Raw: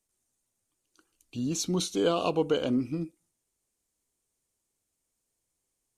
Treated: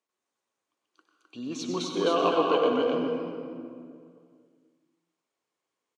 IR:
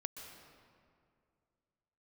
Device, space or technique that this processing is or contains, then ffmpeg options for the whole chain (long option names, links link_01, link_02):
station announcement: -filter_complex "[0:a]highpass=330,lowpass=3600,equalizer=frequency=1100:width_type=o:width=0.27:gain=7,aecho=1:1:96.21|259.5:0.398|0.708[link_01];[1:a]atrim=start_sample=2205[link_02];[link_01][link_02]afir=irnorm=-1:irlink=0,volume=4dB"